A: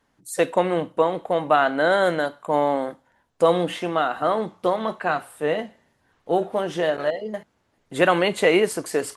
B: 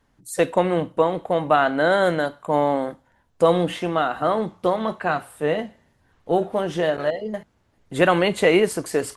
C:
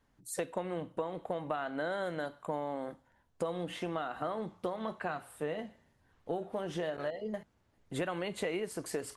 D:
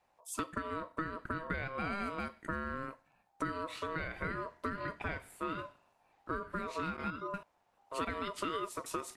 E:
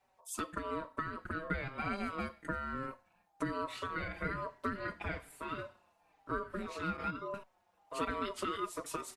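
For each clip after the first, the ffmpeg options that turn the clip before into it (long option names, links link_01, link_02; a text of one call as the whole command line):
ffmpeg -i in.wav -af "lowshelf=frequency=130:gain=12" out.wav
ffmpeg -i in.wav -af "acompressor=threshold=-25dB:ratio=6,volume=-7.5dB" out.wav
ffmpeg -i in.wav -af "aeval=exprs='val(0)*sin(2*PI*800*n/s)':channel_layout=same,volume=1dB" out.wav
ffmpeg -i in.wav -filter_complex "[0:a]asplit=2[link_01][link_02];[link_02]adelay=4.7,afreqshift=-1.1[link_03];[link_01][link_03]amix=inputs=2:normalize=1,volume=3dB" out.wav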